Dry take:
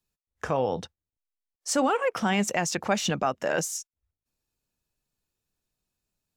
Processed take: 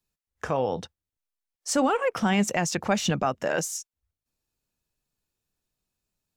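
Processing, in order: 1.68–3.48 low shelf 150 Hz +8.5 dB

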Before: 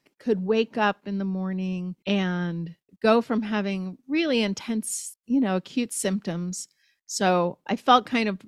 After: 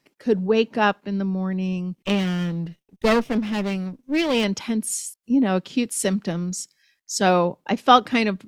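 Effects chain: 1.94–4.44 minimum comb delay 0.35 ms; gain +3.5 dB

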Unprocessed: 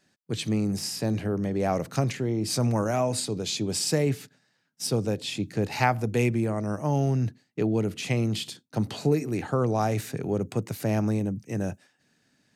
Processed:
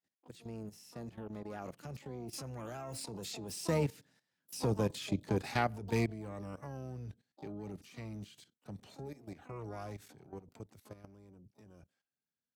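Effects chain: Doppler pass-by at 4.73, 22 m/s, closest 17 m; harmoniser -12 st -17 dB, +12 st -10 dB; level quantiser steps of 14 dB; gain -1.5 dB

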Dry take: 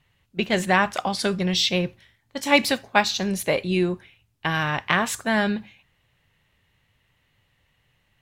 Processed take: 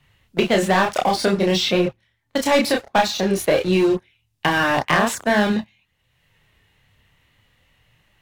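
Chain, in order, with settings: dynamic EQ 520 Hz, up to +7 dB, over -34 dBFS, Q 0.7; sample leveller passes 3; chorus voices 2, 0.5 Hz, delay 28 ms, depth 3 ms; three-band squash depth 70%; gain -6 dB

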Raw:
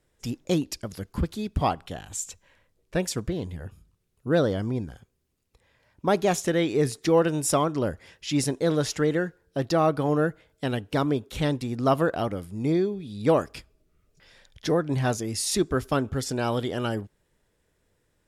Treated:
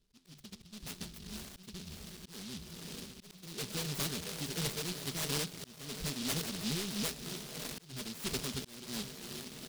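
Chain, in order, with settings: Wiener smoothing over 41 samples; high shelf 4000 Hz +5 dB; comb 4.8 ms, depth 93%; diffused feedback echo 1.067 s, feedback 69%, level -15 dB; overloaded stage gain 20 dB; flange 0.6 Hz, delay 8.9 ms, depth 5.6 ms, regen +86%; soft clip -32 dBFS, distortion -10 dB; time stretch by phase-locked vocoder 0.53×; tremolo 3 Hz, depth 40%; auto swell 0.465 s; air absorption 62 m; noise-modulated delay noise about 4000 Hz, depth 0.42 ms; gain +1.5 dB

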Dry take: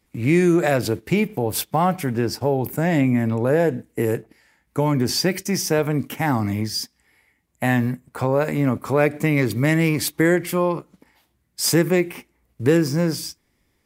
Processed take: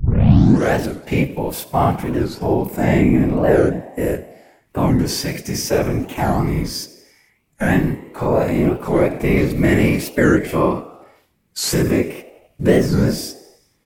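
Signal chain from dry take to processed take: tape start at the beginning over 0.79 s; whisperiser; harmonic-percussive split percussive -16 dB; frequency-shifting echo 89 ms, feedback 59%, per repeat +51 Hz, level -18.5 dB; record warp 45 rpm, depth 250 cents; gain +8.5 dB

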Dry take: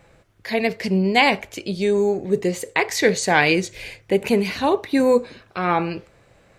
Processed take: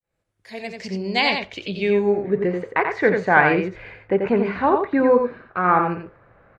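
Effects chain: opening faded in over 2.01 s; echo 88 ms -5.5 dB; low-pass sweep 12000 Hz -> 1400 Hz, 0.17–2.59; gain -1.5 dB

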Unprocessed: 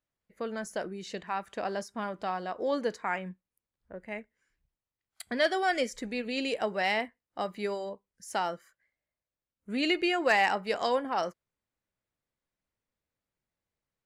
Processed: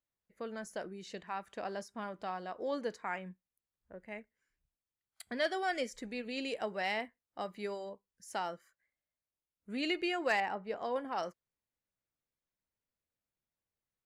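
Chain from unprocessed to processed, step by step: 10.4–10.96 LPF 1000 Hz 6 dB/oct; gain -6.5 dB

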